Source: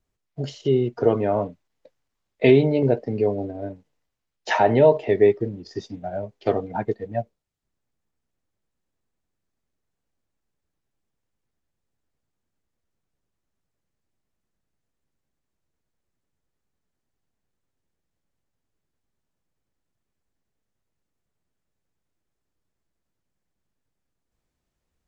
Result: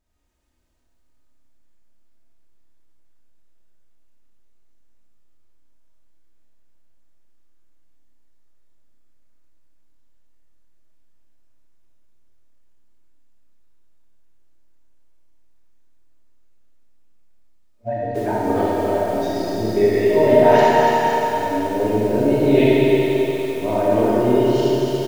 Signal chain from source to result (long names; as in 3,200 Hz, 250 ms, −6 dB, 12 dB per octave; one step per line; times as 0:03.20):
played backwards from end to start
comb filter 3.2 ms, depth 42%
in parallel at +2 dB: downward compressor, threshold −24 dBFS, peak gain reduction 14.5 dB
on the sum: four-comb reverb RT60 3.5 s, combs from 25 ms, DRR −8 dB
feedback echo at a low word length 288 ms, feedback 55%, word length 5 bits, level −5.5 dB
level −7.5 dB